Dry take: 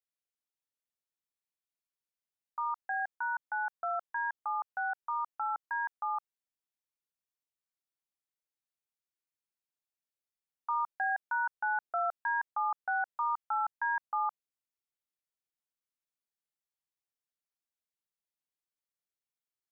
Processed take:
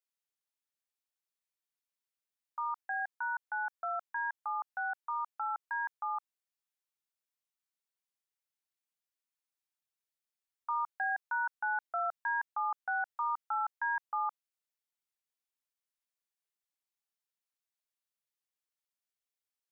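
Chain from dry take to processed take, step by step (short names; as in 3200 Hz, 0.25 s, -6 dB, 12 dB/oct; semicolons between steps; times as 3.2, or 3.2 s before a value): low shelf 430 Hz -11.5 dB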